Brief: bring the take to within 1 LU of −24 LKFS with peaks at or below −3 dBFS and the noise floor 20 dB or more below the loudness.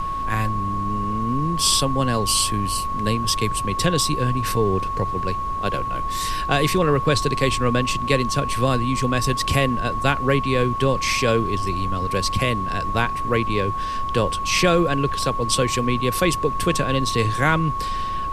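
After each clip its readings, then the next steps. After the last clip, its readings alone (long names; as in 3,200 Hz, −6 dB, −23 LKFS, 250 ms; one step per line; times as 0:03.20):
interfering tone 1,100 Hz; level of the tone −24 dBFS; background noise floor −26 dBFS; target noise floor −42 dBFS; integrated loudness −21.5 LKFS; sample peak −3.5 dBFS; target loudness −24.0 LKFS
→ notch filter 1,100 Hz, Q 30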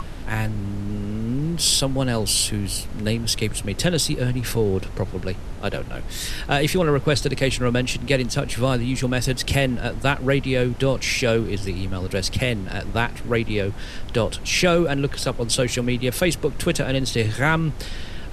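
interfering tone none found; background noise floor −32 dBFS; target noise floor −43 dBFS
→ noise reduction from a noise print 11 dB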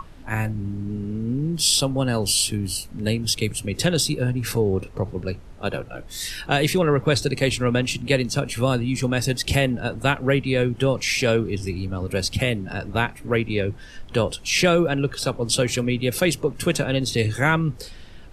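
background noise floor −41 dBFS; target noise floor −43 dBFS
→ noise reduction from a noise print 6 dB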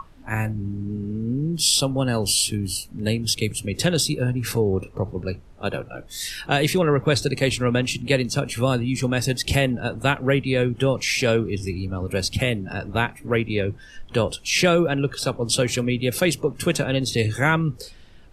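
background noise floor −45 dBFS; integrated loudness −23.0 LKFS; sample peak −4.5 dBFS; target loudness −24.0 LKFS
→ level −1 dB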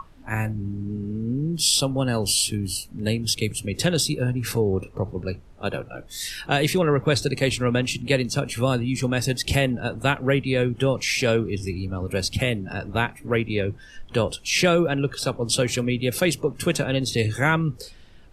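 integrated loudness −24.0 LKFS; sample peak −5.5 dBFS; background noise floor −46 dBFS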